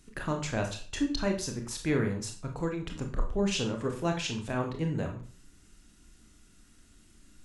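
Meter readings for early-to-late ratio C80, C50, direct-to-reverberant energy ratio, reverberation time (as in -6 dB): 13.0 dB, 8.0 dB, 3.0 dB, 0.45 s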